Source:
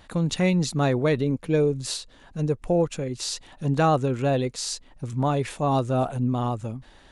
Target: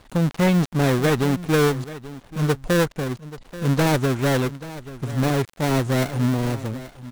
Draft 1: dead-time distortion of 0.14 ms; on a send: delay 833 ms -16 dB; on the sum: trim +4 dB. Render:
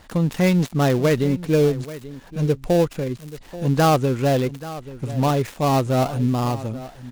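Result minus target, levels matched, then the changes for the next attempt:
dead-time distortion: distortion -9 dB
change: dead-time distortion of 0.48 ms

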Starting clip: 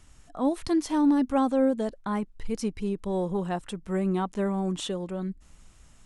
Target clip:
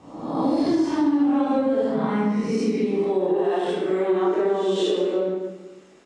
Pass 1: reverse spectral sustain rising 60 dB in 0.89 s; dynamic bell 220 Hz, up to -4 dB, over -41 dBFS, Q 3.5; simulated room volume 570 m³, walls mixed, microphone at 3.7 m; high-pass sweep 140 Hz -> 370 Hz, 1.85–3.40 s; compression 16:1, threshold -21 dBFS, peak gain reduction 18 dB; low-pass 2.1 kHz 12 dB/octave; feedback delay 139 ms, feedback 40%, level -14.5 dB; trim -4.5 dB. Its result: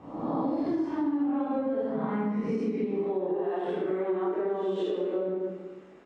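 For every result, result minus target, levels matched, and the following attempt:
4 kHz band -8.5 dB; compression: peak gain reduction +8 dB
reverse spectral sustain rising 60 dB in 0.89 s; dynamic bell 220 Hz, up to -4 dB, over -41 dBFS, Q 3.5; simulated room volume 570 m³, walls mixed, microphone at 3.7 m; high-pass sweep 140 Hz -> 370 Hz, 1.85–3.40 s; compression 16:1, threshold -21 dBFS, peak gain reduction 18 dB; low-pass 5.3 kHz 12 dB/octave; feedback delay 139 ms, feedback 40%, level -14.5 dB; trim -4.5 dB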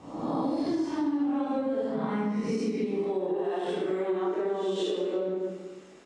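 compression: peak gain reduction +8 dB
reverse spectral sustain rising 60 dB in 0.89 s; dynamic bell 220 Hz, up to -4 dB, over -41 dBFS, Q 3.5; simulated room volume 570 m³, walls mixed, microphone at 3.7 m; high-pass sweep 140 Hz -> 370 Hz, 1.85–3.40 s; compression 16:1, threshold -12.5 dBFS, peak gain reduction 10 dB; low-pass 5.3 kHz 12 dB/octave; feedback delay 139 ms, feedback 40%, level -14.5 dB; trim -4.5 dB

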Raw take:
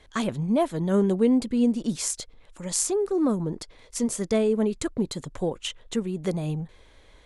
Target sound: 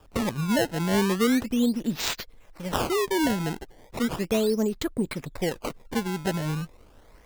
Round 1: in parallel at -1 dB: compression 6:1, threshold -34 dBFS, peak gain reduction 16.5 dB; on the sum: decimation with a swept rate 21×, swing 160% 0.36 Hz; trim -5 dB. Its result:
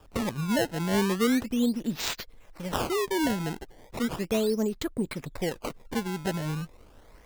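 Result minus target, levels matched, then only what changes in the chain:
compression: peak gain reduction +9 dB
change: compression 6:1, threshold -23 dBFS, peak gain reduction 7.5 dB

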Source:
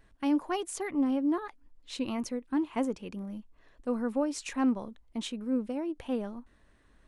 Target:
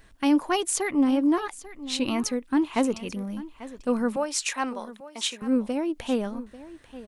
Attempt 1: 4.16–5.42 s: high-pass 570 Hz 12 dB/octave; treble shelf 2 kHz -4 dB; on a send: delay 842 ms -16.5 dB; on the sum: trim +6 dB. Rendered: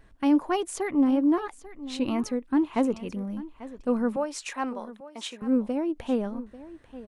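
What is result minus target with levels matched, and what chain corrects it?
4 kHz band -7.5 dB
4.16–5.42 s: high-pass 570 Hz 12 dB/octave; treble shelf 2 kHz +7 dB; on a send: delay 842 ms -16.5 dB; on the sum: trim +6 dB

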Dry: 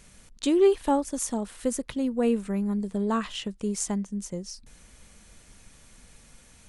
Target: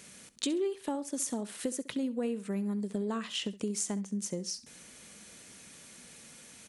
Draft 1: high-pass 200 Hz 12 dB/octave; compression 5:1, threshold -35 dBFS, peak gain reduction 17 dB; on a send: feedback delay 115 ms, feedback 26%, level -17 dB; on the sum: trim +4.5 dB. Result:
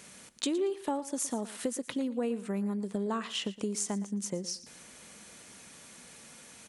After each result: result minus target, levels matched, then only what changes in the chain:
echo 48 ms late; 1 kHz band +4.0 dB
change: feedback delay 67 ms, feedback 26%, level -17 dB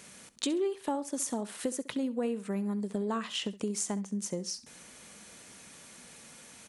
1 kHz band +4.0 dB
add after compression: peaking EQ 920 Hz -5 dB 1.4 oct

